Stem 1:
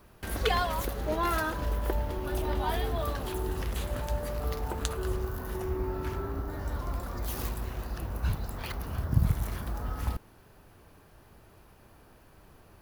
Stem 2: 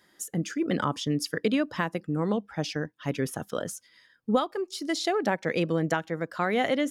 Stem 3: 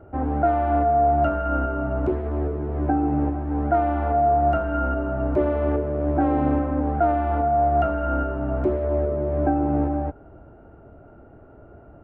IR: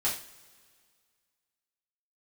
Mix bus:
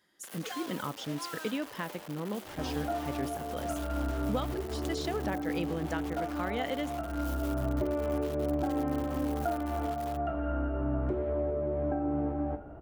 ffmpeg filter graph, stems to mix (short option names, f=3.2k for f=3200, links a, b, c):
-filter_complex "[0:a]aecho=1:1:3.8:0.32,acrusher=bits=4:mix=0:aa=0.000001,highpass=340,volume=-14.5dB[a];[1:a]volume=-9dB,asplit=2[b][c];[2:a]acompressor=threshold=-28dB:ratio=6,adelay=2450,volume=-3.5dB,asplit=2[d][e];[e]volume=-9dB[f];[c]apad=whole_len=638651[g];[d][g]sidechaincompress=threshold=-37dB:ratio=8:attack=16:release=998[h];[3:a]atrim=start_sample=2205[i];[f][i]afir=irnorm=-1:irlink=0[j];[a][b][h][j]amix=inputs=4:normalize=0,equalizer=f=3.1k:w=4.4:g=3"